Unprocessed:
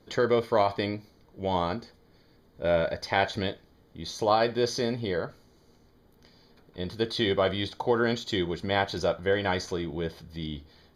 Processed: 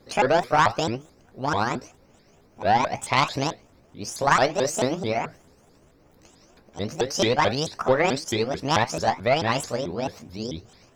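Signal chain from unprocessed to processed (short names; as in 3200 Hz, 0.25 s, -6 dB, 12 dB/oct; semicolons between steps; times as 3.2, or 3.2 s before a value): repeated pitch sweeps +9.5 st, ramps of 0.219 s; added harmonics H 2 -10 dB, 7 -38 dB, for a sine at -9 dBFS; gain +5.5 dB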